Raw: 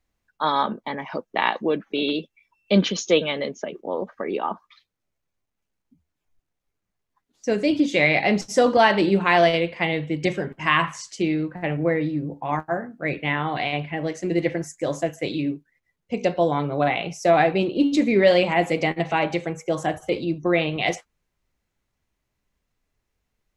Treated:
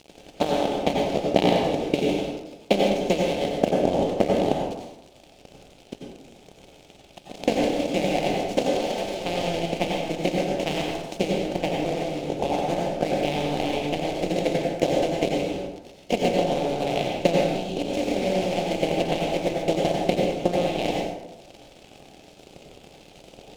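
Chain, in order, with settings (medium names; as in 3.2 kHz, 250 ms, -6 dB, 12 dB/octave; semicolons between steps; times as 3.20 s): spectral levelling over time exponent 0.2; transient shaper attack +12 dB, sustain -9 dB; 8.66–9.25 s: bass shelf 310 Hz -8.5 dB; 17.44–17.76 s: spectral selection erased 440–2500 Hz; crossover distortion -14.5 dBFS; high-order bell 1.4 kHz -15 dB 1.3 oct; plate-style reverb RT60 0.97 s, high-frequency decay 0.55×, pre-delay 75 ms, DRR -1.5 dB; trim -17 dB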